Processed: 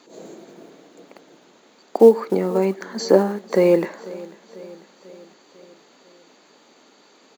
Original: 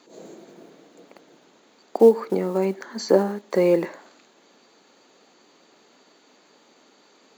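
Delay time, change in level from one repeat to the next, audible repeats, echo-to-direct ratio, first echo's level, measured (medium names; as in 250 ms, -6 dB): 495 ms, -4.5 dB, 4, -18.5 dB, -20.5 dB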